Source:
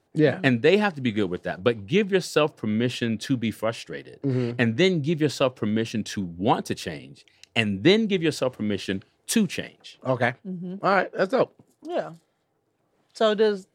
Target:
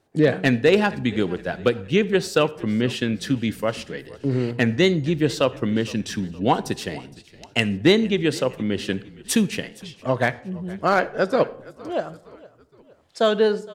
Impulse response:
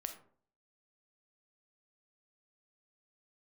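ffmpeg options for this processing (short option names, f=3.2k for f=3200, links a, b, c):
-filter_complex "[0:a]asplit=2[a][b];[b]asplit=3[c][d][e];[c]adelay=464,afreqshift=-40,volume=-21.5dB[f];[d]adelay=928,afreqshift=-80,volume=-27.7dB[g];[e]adelay=1392,afreqshift=-120,volume=-33.9dB[h];[f][g][h]amix=inputs=3:normalize=0[i];[a][i]amix=inputs=2:normalize=0,asoftclip=type=hard:threshold=-9dB,asplit=2[j][k];[1:a]atrim=start_sample=2205,asetrate=29547,aresample=44100[l];[k][l]afir=irnorm=-1:irlink=0,volume=-10.5dB[m];[j][m]amix=inputs=2:normalize=0"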